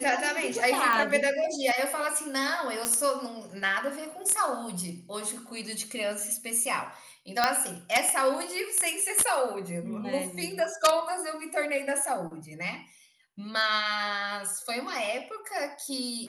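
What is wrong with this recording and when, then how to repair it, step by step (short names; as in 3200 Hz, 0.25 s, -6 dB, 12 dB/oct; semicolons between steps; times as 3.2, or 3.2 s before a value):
0.93 pop
2.85 pop -11 dBFS
7.44 pop -8 dBFS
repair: de-click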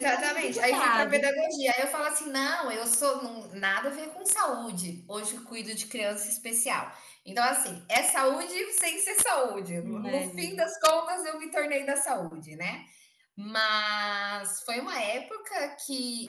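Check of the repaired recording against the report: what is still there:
0.93 pop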